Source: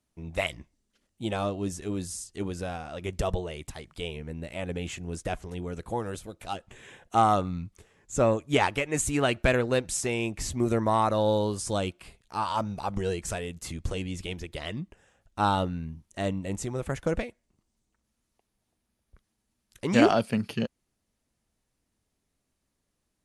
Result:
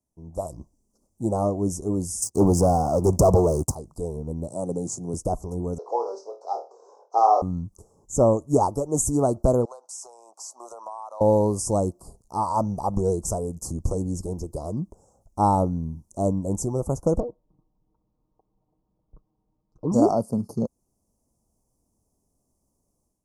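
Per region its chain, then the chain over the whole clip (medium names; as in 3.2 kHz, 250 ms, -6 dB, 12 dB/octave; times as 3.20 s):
2.22–3.75 s: high-pass 63 Hz 24 dB/octave + waveshaping leveller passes 3
4.48–5.14 s: Chebyshev band-pass 110–10000 Hz, order 4 + treble shelf 3.4 kHz +7 dB
5.78–7.42 s: block-companded coder 5-bit + Chebyshev band-pass 420–5400 Hz, order 4 + flutter echo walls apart 4.4 m, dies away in 0.29 s
9.65–11.21 s: high-pass 780 Hz 24 dB/octave + distance through air 65 m + compression 5:1, threshold -38 dBFS
17.20–19.92 s: low-pass 3 kHz 24 dB/octave + peaking EQ 660 Hz -4.5 dB 0.25 oct + comb 6.5 ms, depth 71%
whole clip: inverse Chebyshev band-stop 1.7–3.5 kHz, stop band 50 dB; level rider gain up to 10.5 dB; trim -4 dB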